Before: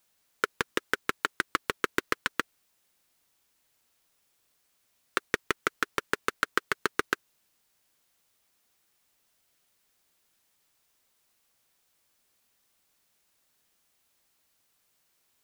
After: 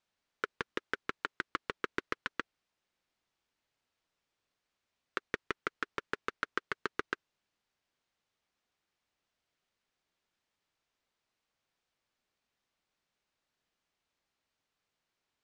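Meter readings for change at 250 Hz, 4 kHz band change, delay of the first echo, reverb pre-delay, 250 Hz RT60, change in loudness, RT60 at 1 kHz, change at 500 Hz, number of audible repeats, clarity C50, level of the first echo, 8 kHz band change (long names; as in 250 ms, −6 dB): −7.0 dB, −10.0 dB, no echo audible, no reverb audible, no reverb audible, −8.0 dB, no reverb audible, −7.5 dB, no echo audible, no reverb audible, no echo audible, −17.0 dB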